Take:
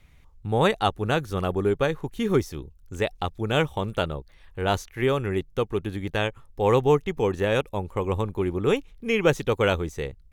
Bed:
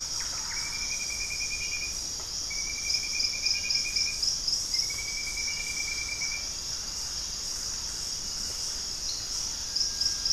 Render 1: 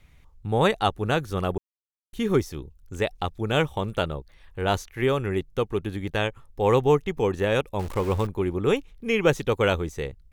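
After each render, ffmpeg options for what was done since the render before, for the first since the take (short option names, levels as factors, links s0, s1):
-filter_complex "[0:a]asettb=1/sr,asplit=3[s0][s1][s2];[s0]atrim=end=7.794[s3];[s1]atrim=start=7.79:end=8.27,asetpts=PTS-STARTPTS,afade=t=in:d=0.004:c=qsin,afade=t=out:st=0.476:d=0.004:c=qsin,aeval=exprs='val(0)+0.5*0.0251*sgn(val(0))':c=same[s4];[s2]atrim=start=8.266[s5];[s3][s4]acrossfade=d=0.004:c1=hsin:c2=qsin[s6];[s6][s5]acrossfade=d=0.004:c1=qsin:c2=hsin,asplit=3[s7][s8][s9];[s7]atrim=end=1.58,asetpts=PTS-STARTPTS,afade=t=out:st=1.576:d=0.004:c=hsin[s10];[s8]atrim=start=1.58:end=2.13,asetpts=PTS-STARTPTS,volume=0[s11];[s9]atrim=start=2.13,asetpts=PTS-STARTPTS,afade=t=in:d=0.004:c=hsin[s12];[s10][s11][s12]concat=n=3:v=0:a=1"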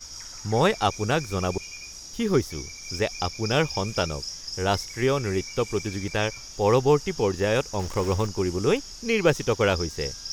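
-filter_complex "[1:a]volume=0.422[s0];[0:a][s0]amix=inputs=2:normalize=0"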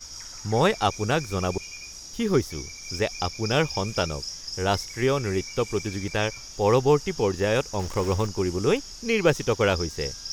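-af anull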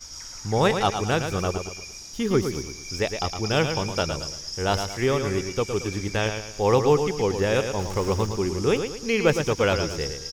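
-af "aecho=1:1:112|224|336|448:0.422|0.16|0.0609|0.0231"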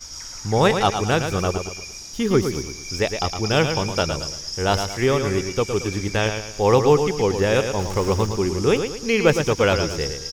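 -af "volume=1.5"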